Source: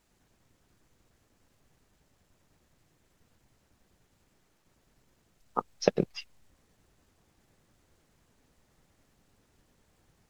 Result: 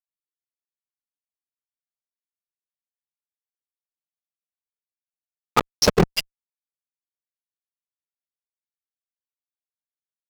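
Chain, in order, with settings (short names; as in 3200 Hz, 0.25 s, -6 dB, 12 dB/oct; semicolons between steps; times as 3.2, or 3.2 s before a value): Wiener smoothing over 41 samples; fuzz box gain 35 dB, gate -42 dBFS; gain +2.5 dB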